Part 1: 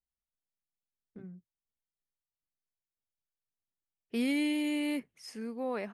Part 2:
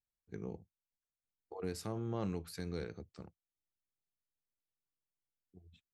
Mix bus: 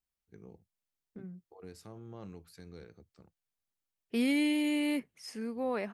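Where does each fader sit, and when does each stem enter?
+1.5, −9.0 decibels; 0.00, 0.00 seconds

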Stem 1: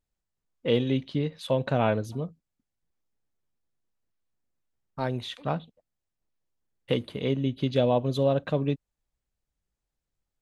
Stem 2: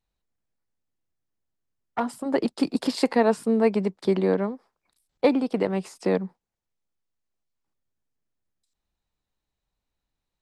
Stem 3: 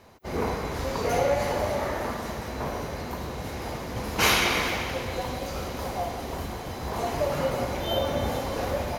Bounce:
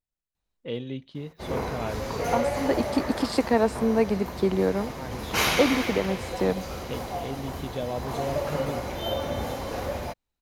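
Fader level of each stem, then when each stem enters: −8.5, −1.5, −2.5 decibels; 0.00, 0.35, 1.15 seconds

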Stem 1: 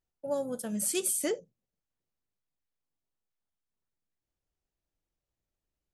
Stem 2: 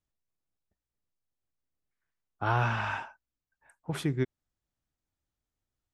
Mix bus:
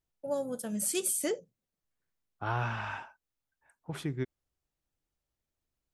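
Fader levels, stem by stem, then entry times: −1.0, −5.0 decibels; 0.00, 0.00 seconds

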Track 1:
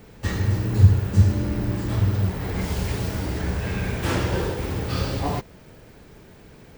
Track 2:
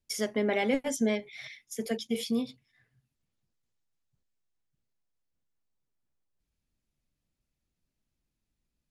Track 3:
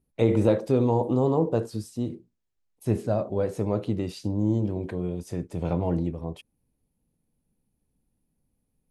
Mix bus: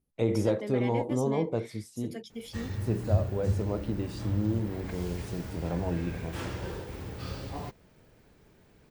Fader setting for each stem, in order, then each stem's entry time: −12.5, −9.5, −5.5 decibels; 2.30, 0.25, 0.00 seconds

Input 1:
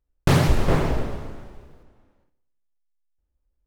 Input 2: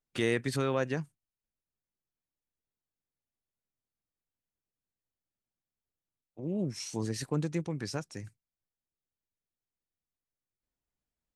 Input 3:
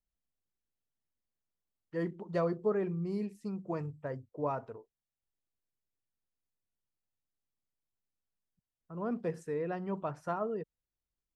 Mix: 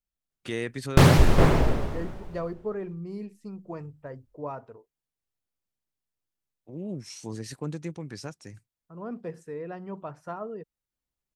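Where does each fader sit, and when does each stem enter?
+1.5, −2.5, −1.5 decibels; 0.70, 0.30, 0.00 seconds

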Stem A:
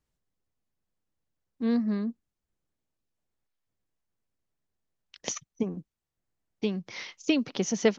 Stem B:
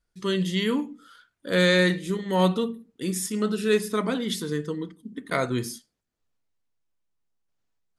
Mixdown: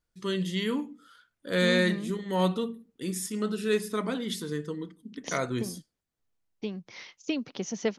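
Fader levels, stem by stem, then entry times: −5.5, −4.5 decibels; 0.00, 0.00 seconds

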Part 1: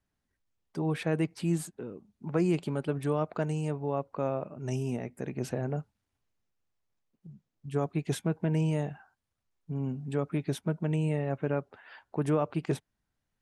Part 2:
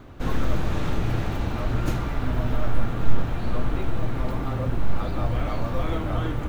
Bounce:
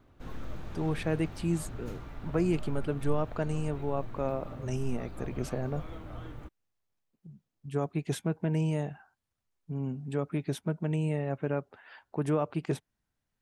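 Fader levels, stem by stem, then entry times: −1.0, −16.5 decibels; 0.00, 0.00 seconds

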